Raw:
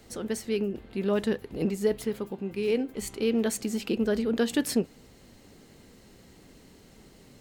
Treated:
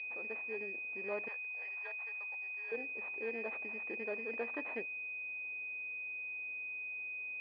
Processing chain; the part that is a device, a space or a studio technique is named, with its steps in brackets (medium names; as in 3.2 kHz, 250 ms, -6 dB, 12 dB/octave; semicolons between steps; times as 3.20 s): toy sound module (decimation joined by straight lines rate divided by 4×; class-D stage that switches slowly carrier 2.5 kHz; cabinet simulation 700–4400 Hz, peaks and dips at 1.4 kHz -7 dB, 2 kHz +7 dB, 4.2 kHz +5 dB); 1.28–2.72 s: high-pass 750 Hz 24 dB/octave; trim -5 dB